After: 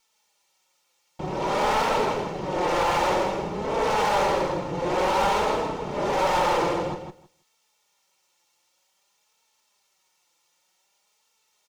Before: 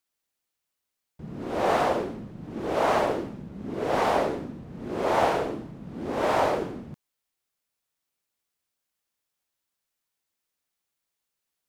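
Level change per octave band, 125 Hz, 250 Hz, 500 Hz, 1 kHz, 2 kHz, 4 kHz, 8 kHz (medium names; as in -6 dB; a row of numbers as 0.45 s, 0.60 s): +3.0 dB, +1.0 dB, +2.0 dB, +4.5 dB, +4.0 dB, +7.0 dB, +7.5 dB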